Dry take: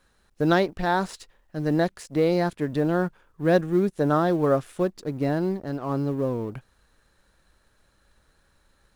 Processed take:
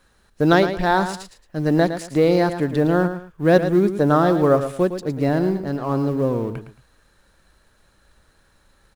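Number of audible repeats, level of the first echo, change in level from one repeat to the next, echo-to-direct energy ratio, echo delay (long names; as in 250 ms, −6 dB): 2, −10.0 dB, −11.5 dB, −9.5 dB, 111 ms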